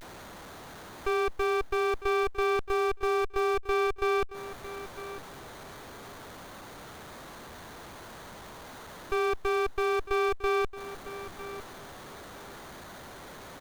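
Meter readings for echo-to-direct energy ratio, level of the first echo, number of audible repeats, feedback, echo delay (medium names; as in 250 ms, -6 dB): -14.0 dB, -14.0 dB, 2, 17%, 953 ms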